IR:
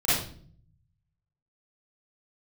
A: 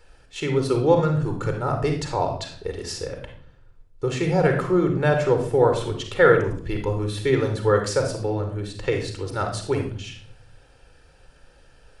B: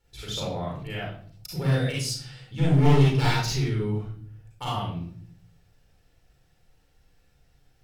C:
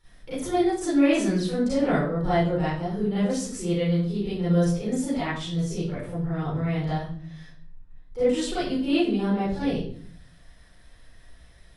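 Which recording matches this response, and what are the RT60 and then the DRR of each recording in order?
C; 0.50, 0.50, 0.50 s; 4.0, -5.5, -12.0 dB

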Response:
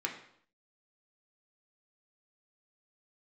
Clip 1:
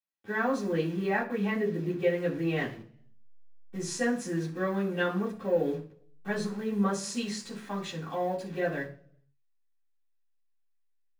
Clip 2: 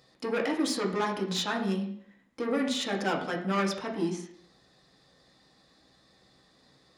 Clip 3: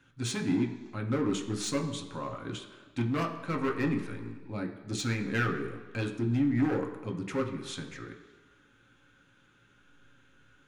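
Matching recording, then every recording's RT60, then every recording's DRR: 2; 0.45 s, 0.65 s, not exponential; -11.5, 0.0, 2.0 dB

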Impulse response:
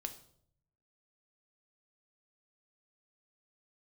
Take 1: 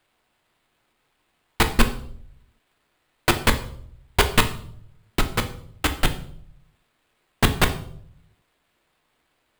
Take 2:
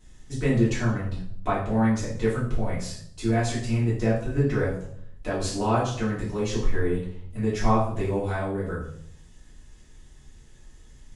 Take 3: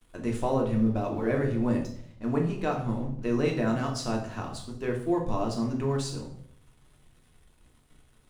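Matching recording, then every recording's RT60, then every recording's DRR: 1; 0.65, 0.65, 0.65 s; 6.5, -9.0, 0.0 dB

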